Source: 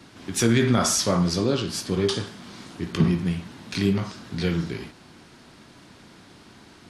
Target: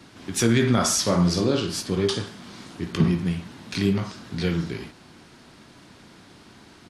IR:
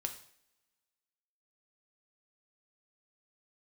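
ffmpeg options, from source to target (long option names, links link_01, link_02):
-filter_complex "[0:a]asplit=3[link_01][link_02][link_03];[link_01]afade=type=out:start_time=1.05:duration=0.02[link_04];[link_02]asplit=2[link_05][link_06];[link_06]adelay=46,volume=-7dB[link_07];[link_05][link_07]amix=inputs=2:normalize=0,afade=type=in:start_time=1.05:duration=0.02,afade=type=out:start_time=1.81:duration=0.02[link_08];[link_03]afade=type=in:start_time=1.81:duration=0.02[link_09];[link_04][link_08][link_09]amix=inputs=3:normalize=0"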